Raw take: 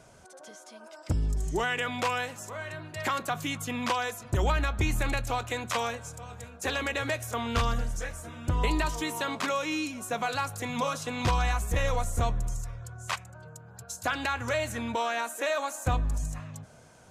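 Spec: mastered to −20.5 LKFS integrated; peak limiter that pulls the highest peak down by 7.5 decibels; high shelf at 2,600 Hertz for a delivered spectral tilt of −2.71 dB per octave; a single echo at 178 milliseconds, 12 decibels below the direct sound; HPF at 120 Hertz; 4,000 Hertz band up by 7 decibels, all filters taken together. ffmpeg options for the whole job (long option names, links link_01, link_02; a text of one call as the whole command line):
ffmpeg -i in.wav -af "highpass=120,highshelf=frequency=2600:gain=3.5,equalizer=frequency=4000:width_type=o:gain=6,alimiter=limit=-20.5dB:level=0:latency=1,aecho=1:1:178:0.251,volume=11dB" out.wav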